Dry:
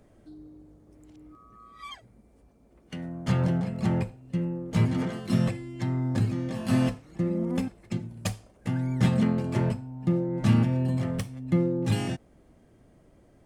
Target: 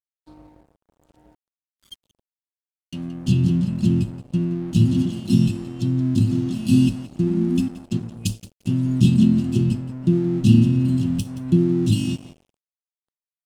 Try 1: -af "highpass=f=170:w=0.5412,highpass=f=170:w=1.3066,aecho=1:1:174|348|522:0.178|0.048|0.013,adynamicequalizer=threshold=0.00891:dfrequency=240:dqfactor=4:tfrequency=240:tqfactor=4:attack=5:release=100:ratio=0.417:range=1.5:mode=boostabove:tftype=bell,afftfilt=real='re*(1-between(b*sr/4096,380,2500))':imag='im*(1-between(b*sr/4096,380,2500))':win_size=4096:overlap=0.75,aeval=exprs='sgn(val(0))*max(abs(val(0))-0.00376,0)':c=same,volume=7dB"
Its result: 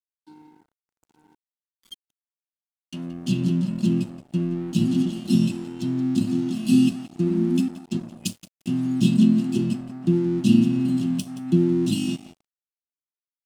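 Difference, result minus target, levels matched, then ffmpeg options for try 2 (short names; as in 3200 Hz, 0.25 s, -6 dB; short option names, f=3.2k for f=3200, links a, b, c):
125 Hz band -4.5 dB
-af "aecho=1:1:174|348|522:0.178|0.048|0.013,adynamicequalizer=threshold=0.00891:dfrequency=240:dqfactor=4:tfrequency=240:tqfactor=4:attack=5:release=100:ratio=0.417:range=1.5:mode=boostabove:tftype=bell,afftfilt=real='re*(1-between(b*sr/4096,380,2500))':imag='im*(1-between(b*sr/4096,380,2500))':win_size=4096:overlap=0.75,aeval=exprs='sgn(val(0))*max(abs(val(0))-0.00376,0)':c=same,volume=7dB"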